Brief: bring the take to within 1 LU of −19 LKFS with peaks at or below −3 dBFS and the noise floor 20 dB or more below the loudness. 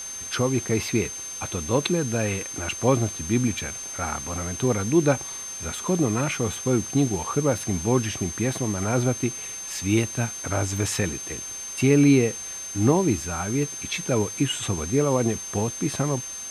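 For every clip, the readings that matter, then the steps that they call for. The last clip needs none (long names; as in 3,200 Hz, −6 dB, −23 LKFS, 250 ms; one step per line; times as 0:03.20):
interfering tone 6,300 Hz; level of the tone −33 dBFS; background noise floor −35 dBFS; target noise floor −45 dBFS; integrated loudness −24.5 LKFS; sample peak −6.5 dBFS; target loudness −19.0 LKFS
→ notch filter 6,300 Hz, Q 30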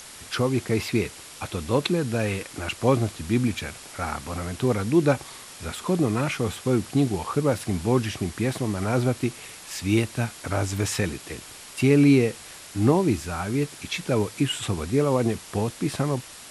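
interfering tone none found; background noise floor −43 dBFS; target noise floor −45 dBFS
→ noise reduction from a noise print 6 dB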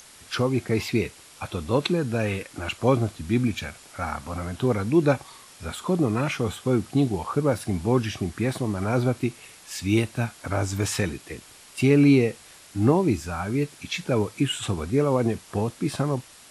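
background noise floor −49 dBFS; integrated loudness −25.0 LKFS; sample peak −7.0 dBFS; target loudness −19.0 LKFS
→ level +6 dB
brickwall limiter −3 dBFS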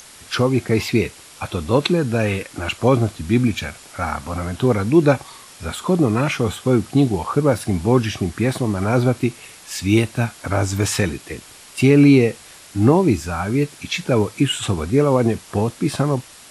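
integrated loudness −19.0 LKFS; sample peak −3.0 dBFS; background noise floor −43 dBFS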